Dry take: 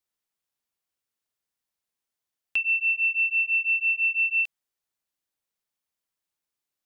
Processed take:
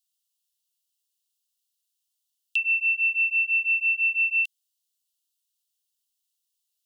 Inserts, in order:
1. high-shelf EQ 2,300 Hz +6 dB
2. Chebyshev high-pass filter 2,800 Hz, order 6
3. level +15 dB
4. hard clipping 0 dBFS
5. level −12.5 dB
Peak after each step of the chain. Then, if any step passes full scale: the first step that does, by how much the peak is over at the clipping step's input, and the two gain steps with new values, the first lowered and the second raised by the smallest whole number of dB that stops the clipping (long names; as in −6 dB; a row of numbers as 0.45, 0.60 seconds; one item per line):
−15.0, −19.5, −4.5, −4.5, −17.0 dBFS
no step passes full scale